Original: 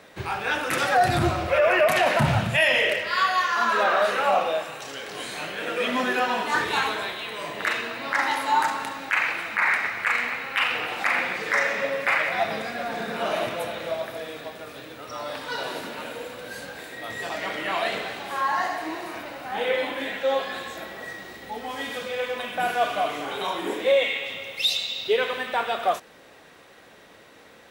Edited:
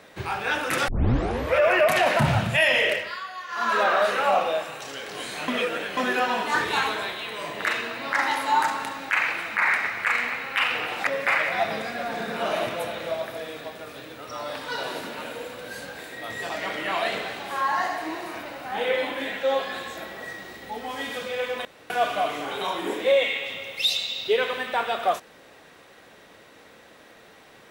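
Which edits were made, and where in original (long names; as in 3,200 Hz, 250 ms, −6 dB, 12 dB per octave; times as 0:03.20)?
0:00.88: tape start 0.69 s
0:02.94–0:03.73: duck −14 dB, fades 0.26 s
0:05.48–0:05.97: reverse
0:11.07–0:11.87: remove
0:22.45–0:22.70: fill with room tone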